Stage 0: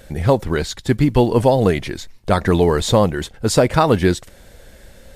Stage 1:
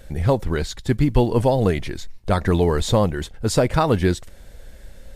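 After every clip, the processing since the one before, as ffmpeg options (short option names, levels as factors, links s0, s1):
-af "lowshelf=f=69:g=11,volume=0.596"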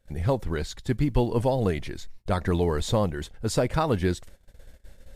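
-af "agate=range=0.112:threshold=0.0126:ratio=16:detection=peak,volume=0.501"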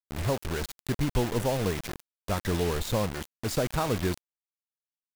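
-af "acrusher=bits=4:mix=0:aa=0.000001,volume=0.631"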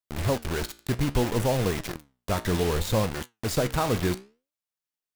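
-af "flanger=delay=7.8:depth=9.8:regen=76:speed=0.63:shape=sinusoidal,volume=2.24"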